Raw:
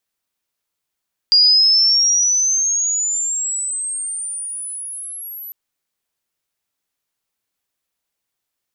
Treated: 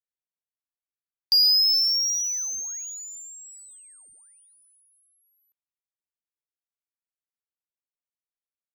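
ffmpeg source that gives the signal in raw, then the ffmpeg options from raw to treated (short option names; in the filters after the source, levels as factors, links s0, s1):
-f lavfi -i "aevalsrc='pow(10,(-8-21.5*t/4.2)/20)*sin(2*PI*4800*4.2/log(12000/4800)*(exp(log(12000/4800)*t/4.2)-1))':d=4.2:s=44100"
-af "afftdn=nr=23:nf=-36,firequalizer=gain_entry='entry(1800,0);entry(3100,-3);entry(5800,-7);entry(11000,-12)':delay=0.05:min_phase=1,adynamicsmooth=sensitivity=2:basefreq=3400"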